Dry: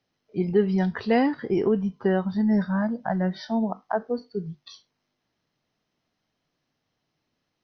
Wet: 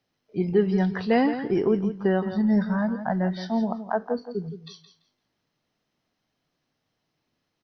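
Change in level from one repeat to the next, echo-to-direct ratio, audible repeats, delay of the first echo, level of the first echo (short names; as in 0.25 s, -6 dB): -14.5 dB, -11.0 dB, 2, 0.169 s, -11.0 dB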